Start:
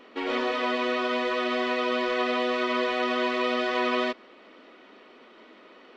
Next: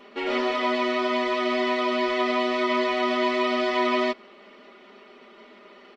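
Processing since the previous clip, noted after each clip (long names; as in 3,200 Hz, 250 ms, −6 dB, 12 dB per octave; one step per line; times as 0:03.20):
comb filter 5 ms, depth 83%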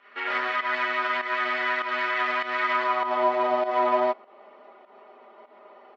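fake sidechain pumping 99 BPM, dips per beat 1, −11 dB, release 155 ms
harmonic generator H 4 −16 dB, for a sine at −12 dBFS
band-pass filter sweep 1,600 Hz → 780 Hz, 0:02.67–0:03.26
level +7 dB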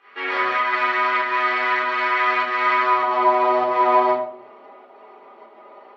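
rectangular room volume 830 cubic metres, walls furnished, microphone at 3.8 metres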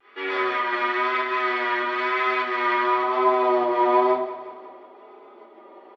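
hollow resonant body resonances 330/3,400 Hz, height 10 dB, ringing for 25 ms
pitch vibrato 1 Hz 42 cents
repeating echo 179 ms, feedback 55%, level −14 dB
level −4.5 dB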